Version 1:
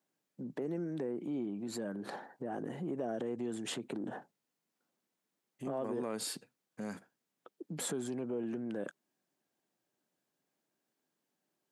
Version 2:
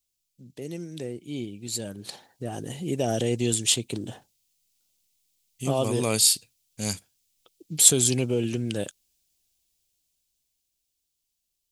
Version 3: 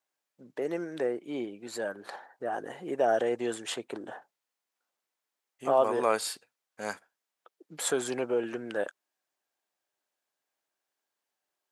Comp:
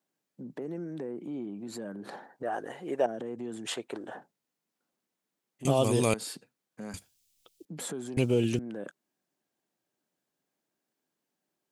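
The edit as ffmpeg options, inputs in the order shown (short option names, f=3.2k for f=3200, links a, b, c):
-filter_complex "[2:a]asplit=2[a][b];[1:a]asplit=3[c][d][e];[0:a]asplit=6[f][g][h][i][j][k];[f]atrim=end=2.432[l];[a]atrim=start=2.428:end=3.062[m];[g]atrim=start=3.058:end=3.672[n];[b]atrim=start=3.668:end=4.152[o];[h]atrim=start=4.148:end=5.652[p];[c]atrim=start=5.648:end=6.142[q];[i]atrim=start=6.138:end=6.942[r];[d]atrim=start=6.938:end=7.652[s];[j]atrim=start=7.648:end=8.172[t];[e]atrim=start=8.168:end=8.592[u];[k]atrim=start=8.588[v];[l][m]acrossfade=d=0.004:c1=hsin:c2=hsin[w];[w][n]acrossfade=d=0.004:c1=hsin:c2=hsin[x];[x][o]acrossfade=d=0.004:c1=hsin:c2=hsin[y];[y][p]acrossfade=d=0.004:c1=hsin:c2=hsin[z];[z][q]acrossfade=d=0.004:c1=hsin:c2=hsin[aa];[aa][r]acrossfade=d=0.004:c1=hsin:c2=hsin[ab];[ab][s]acrossfade=d=0.004:c1=hsin:c2=hsin[ac];[ac][t]acrossfade=d=0.004:c1=hsin:c2=hsin[ad];[ad][u]acrossfade=d=0.004:c1=hsin:c2=hsin[ae];[ae][v]acrossfade=d=0.004:c1=hsin:c2=hsin"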